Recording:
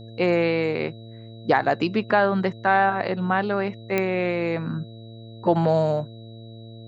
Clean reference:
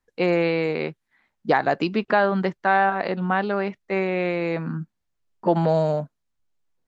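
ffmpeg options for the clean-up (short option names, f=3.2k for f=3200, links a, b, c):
-af "adeclick=t=4,bandreject=f=112.9:t=h:w=4,bandreject=f=225.8:t=h:w=4,bandreject=f=338.7:t=h:w=4,bandreject=f=451.6:t=h:w=4,bandreject=f=564.5:t=h:w=4,bandreject=f=677.4:t=h:w=4,bandreject=f=3.9k:w=30"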